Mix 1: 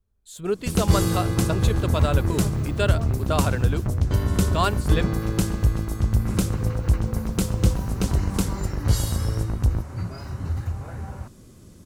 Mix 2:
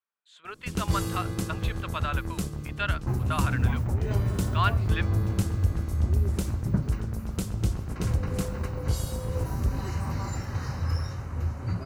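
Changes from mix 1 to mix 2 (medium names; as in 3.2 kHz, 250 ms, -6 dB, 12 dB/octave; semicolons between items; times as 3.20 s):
speech: add Butterworth band-pass 1.8 kHz, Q 0.85; first sound -8.0 dB; second sound: entry +1.70 s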